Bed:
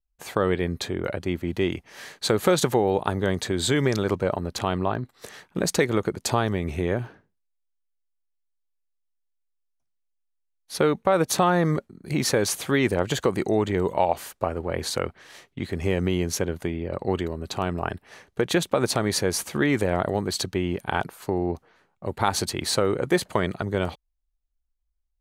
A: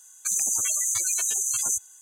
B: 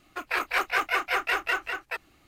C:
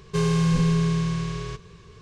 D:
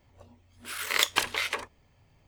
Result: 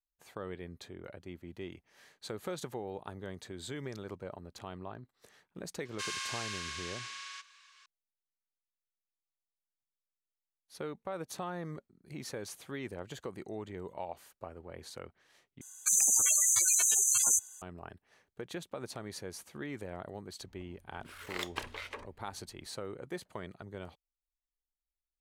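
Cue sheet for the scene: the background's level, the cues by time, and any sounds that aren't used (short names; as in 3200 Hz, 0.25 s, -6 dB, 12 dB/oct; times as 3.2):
bed -19 dB
5.85 add C -2.5 dB + HPF 1300 Hz 24 dB/oct
15.61 replace with A -1 dB + low shelf 78 Hz -10 dB
20.4 add D -11 dB + tilt -2.5 dB/oct
not used: B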